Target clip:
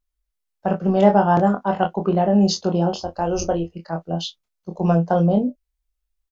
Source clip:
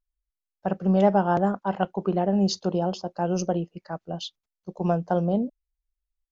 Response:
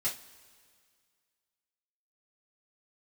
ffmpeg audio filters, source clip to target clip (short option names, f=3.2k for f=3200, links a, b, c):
-filter_complex "[0:a]asettb=1/sr,asplit=3[a][b][c];[a]atrim=end=2.974[d];[b]atrim=start=2.97:end=3.7,asetpts=PTS-STARTPTS,afade=t=in:d=0.004:c=qsin,afade=t=out:st=0.726:d=0.004:c=qsin,lowshelf=f=100:t=q:w=3:g=14[e];[c]atrim=start=3.696[f];[d][e]acrossfade=d=0.004:c1=hsin:c2=qsin[g];[g][f]acrossfade=d=0.004:c1=qsin:c2=hsin,asplit=2[h][i];[i]adelay=24,volume=-11dB[j];[h][j]amix=inputs=2:normalize=0,aecho=1:1:24|36:0.316|0.188,volume=4.5dB"